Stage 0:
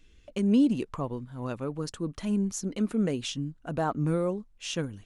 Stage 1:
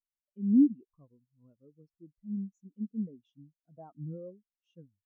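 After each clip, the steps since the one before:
every bin expanded away from the loudest bin 2.5 to 1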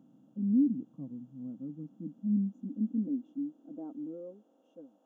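compressor on every frequency bin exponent 0.4
high-pass filter sweep 130 Hz → 570 Hz, 0:01.20–0:04.96
level −7.5 dB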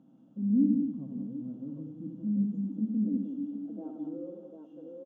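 high-frequency loss of the air 98 metres
multi-tap delay 79/177/247/601/746/748 ms −5/−5.5/−11/−17/−6.5/−7.5 dB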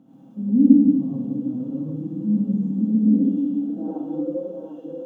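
reverb whose tail is shaped and stops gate 150 ms rising, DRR −6.5 dB
level +6 dB

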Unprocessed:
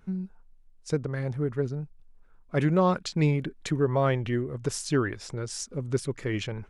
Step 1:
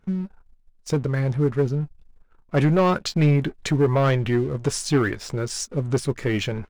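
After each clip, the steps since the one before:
high-shelf EQ 9,700 Hz −6.5 dB
leveller curve on the samples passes 2
double-tracking delay 14 ms −13 dB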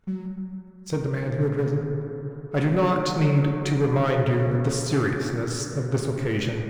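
dense smooth reverb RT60 3.5 s, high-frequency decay 0.25×, DRR 1 dB
level −4 dB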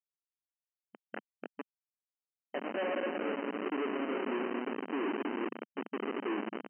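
band-pass filter sweep 1,900 Hz → 330 Hz, 0:00.96–0:04.01
comparator with hysteresis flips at −30.5 dBFS
linear-phase brick-wall band-pass 200–3,100 Hz

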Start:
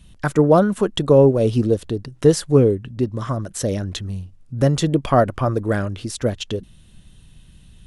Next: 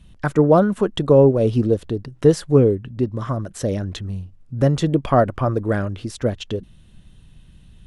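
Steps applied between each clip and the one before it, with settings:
high-shelf EQ 3,900 Hz −8.5 dB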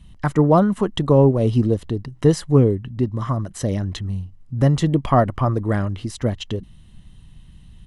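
comb filter 1 ms, depth 37%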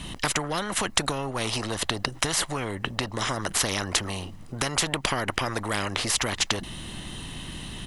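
downward compressor, threshold −19 dBFS, peak gain reduction 10.5 dB
every bin compressed towards the loudest bin 4 to 1
level +8 dB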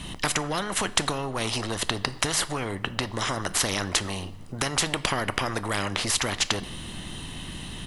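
convolution reverb RT60 0.90 s, pre-delay 8 ms, DRR 14 dB

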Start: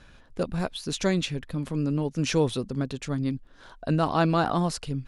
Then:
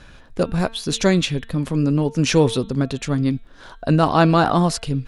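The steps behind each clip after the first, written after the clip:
hum removal 225.9 Hz, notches 18
level +8 dB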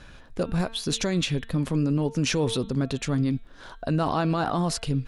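brickwall limiter −13.5 dBFS, peak gain reduction 10.5 dB
level −2.5 dB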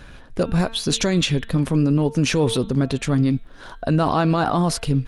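level +6 dB
Opus 32 kbit/s 48,000 Hz

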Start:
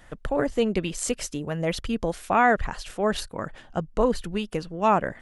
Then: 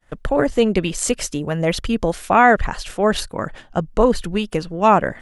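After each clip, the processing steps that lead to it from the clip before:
downward expander −41 dBFS
level +7 dB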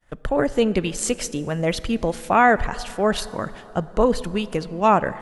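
dense smooth reverb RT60 3.8 s, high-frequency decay 0.5×, DRR 16.5 dB
level −3 dB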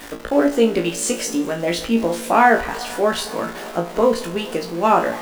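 converter with a step at zero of −29.5 dBFS
low shelf with overshoot 190 Hz −10.5 dB, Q 1.5
flutter between parallel walls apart 3 metres, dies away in 0.25 s
level −1 dB

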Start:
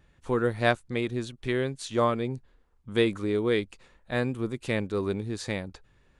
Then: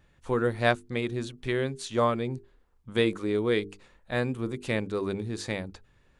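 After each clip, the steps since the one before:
mains-hum notches 50/100/150/200/250/300/350/400/450 Hz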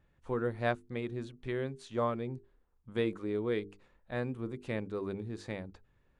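high-shelf EQ 3,000 Hz −11 dB
level −6.5 dB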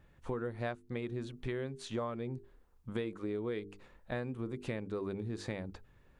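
downward compressor 6 to 1, threshold −41 dBFS, peak gain reduction 15 dB
level +6.5 dB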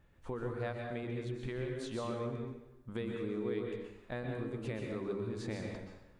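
dense smooth reverb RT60 0.92 s, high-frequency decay 0.85×, pre-delay 110 ms, DRR 1 dB
level −3 dB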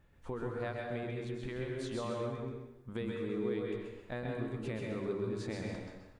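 single-tap delay 131 ms −5.5 dB

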